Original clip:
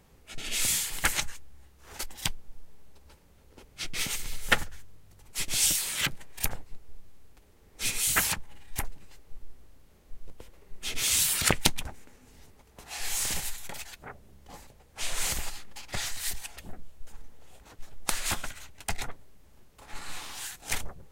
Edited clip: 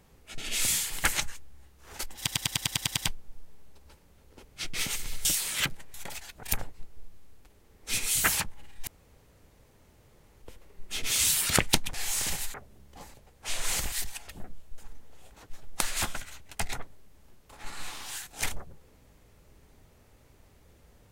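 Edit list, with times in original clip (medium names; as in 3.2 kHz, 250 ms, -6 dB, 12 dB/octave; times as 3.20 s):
2.17 s: stutter 0.10 s, 9 plays
4.45–5.66 s: delete
8.79–10.34 s: room tone
11.86–12.98 s: delete
13.58–14.07 s: move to 6.35 s
15.45–16.21 s: delete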